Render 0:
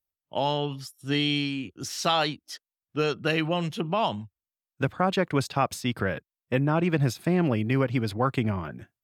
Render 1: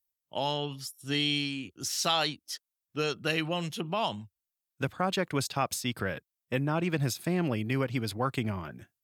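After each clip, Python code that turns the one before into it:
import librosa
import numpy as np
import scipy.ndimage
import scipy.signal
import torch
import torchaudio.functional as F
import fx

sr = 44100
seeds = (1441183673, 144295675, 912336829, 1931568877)

y = fx.high_shelf(x, sr, hz=3800.0, db=11.0)
y = y * 10.0 ** (-5.5 / 20.0)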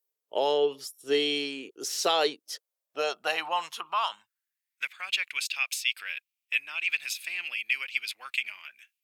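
y = fx.filter_sweep_highpass(x, sr, from_hz=430.0, to_hz=2500.0, start_s=2.42, end_s=5.07, q=5.1)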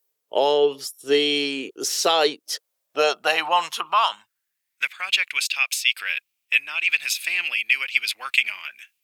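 y = fx.rider(x, sr, range_db=3, speed_s=0.5)
y = y * 10.0 ** (8.0 / 20.0)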